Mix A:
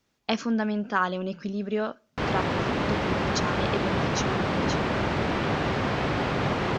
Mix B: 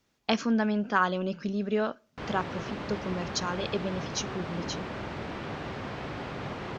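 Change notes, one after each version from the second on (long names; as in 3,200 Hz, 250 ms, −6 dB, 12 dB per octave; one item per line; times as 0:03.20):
background −10.5 dB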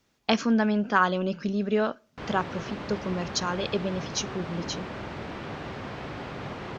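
speech +3.0 dB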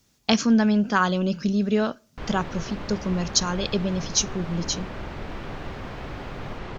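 speech: add bass and treble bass +8 dB, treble +12 dB
background: remove high-pass filter 97 Hz 12 dB per octave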